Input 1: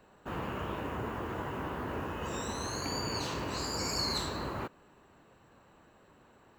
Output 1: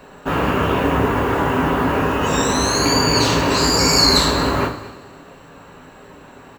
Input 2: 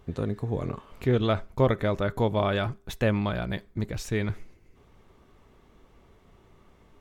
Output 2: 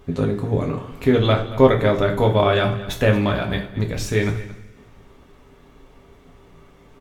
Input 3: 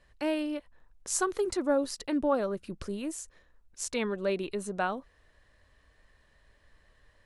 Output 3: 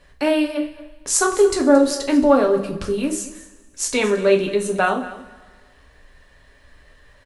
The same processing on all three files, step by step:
mains-hum notches 60/120/180/240/300 Hz
single-tap delay 225 ms −17 dB
coupled-rooms reverb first 0.35 s, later 1.7 s, from −18 dB, DRR 1 dB
normalise the peak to −2 dBFS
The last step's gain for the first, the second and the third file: +17.0, +6.0, +10.0 decibels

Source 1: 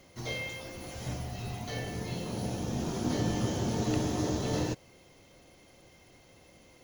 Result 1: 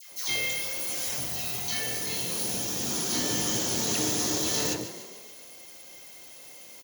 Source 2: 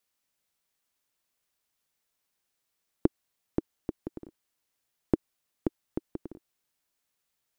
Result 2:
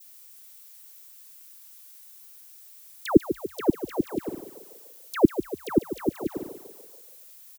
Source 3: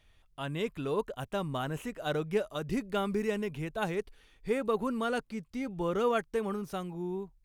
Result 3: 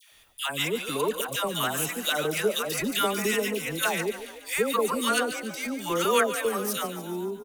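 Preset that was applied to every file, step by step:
RIAA equalisation recording
noise gate with hold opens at −57 dBFS
dynamic equaliser 710 Hz, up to −5 dB, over −49 dBFS, Q 1.4
all-pass dispersion lows, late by 119 ms, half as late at 1,000 Hz
on a send: echo with shifted repeats 144 ms, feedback 55%, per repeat +34 Hz, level −12 dB
on the sum: loudness normalisation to −27 LKFS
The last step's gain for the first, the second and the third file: +4.5, +15.5, +9.0 decibels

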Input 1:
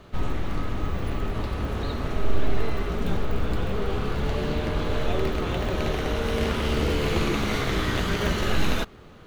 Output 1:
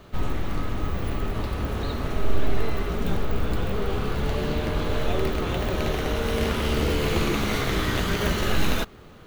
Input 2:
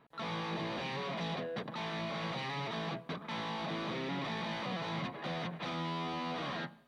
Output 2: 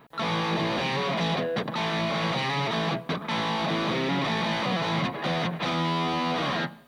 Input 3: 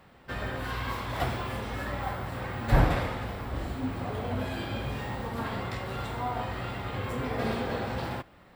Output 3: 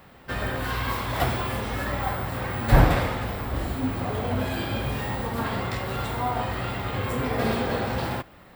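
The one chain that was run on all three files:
high-shelf EQ 12,000 Hz +11 dB
loudness normalisation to −27 LKFS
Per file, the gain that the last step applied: +0.5, +11.0, +5.0 decibels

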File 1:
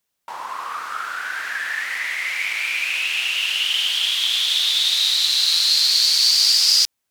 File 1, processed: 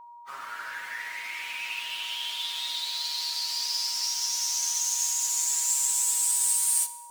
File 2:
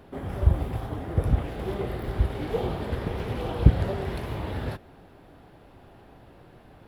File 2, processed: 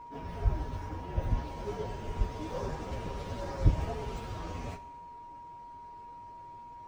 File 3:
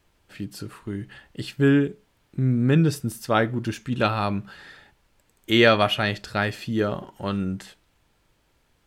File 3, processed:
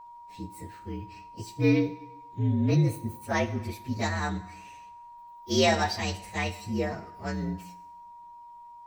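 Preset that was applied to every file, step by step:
partials spread apart or drawn together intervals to 120%
steady tone 950 Hz −41 dBFS
coupled-rooms reverb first 0.87 s, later 2.6 s, from −24 dB, DRR 11.5 dB
level −4 dB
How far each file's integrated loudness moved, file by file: −9.0, −8.0, −5.5 LU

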